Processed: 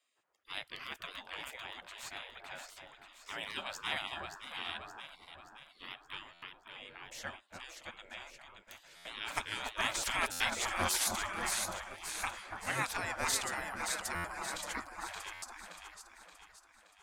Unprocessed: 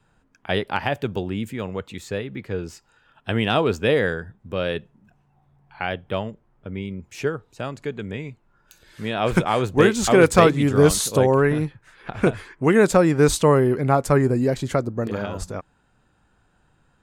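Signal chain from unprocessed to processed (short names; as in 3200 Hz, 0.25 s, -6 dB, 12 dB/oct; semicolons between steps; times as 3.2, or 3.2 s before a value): echo with dull and thin repeats by turns 0.287 s, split 1000 Hz, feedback 69%, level -3.5 dB; spectral gate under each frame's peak -20 dB weak; stuck buffer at 6.33/8.96/10.31/14.15/15.33, samples 512, times 7; gain -5.5 dB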